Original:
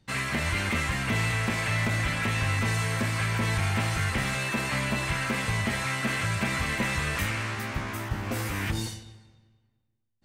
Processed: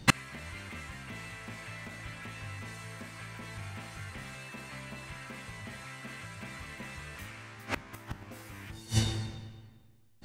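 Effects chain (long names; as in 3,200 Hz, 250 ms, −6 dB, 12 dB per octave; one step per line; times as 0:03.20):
hum removal 112.2 Hz, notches 19
gate with flip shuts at −24 dBFS, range −32 dB
level +16.5 dB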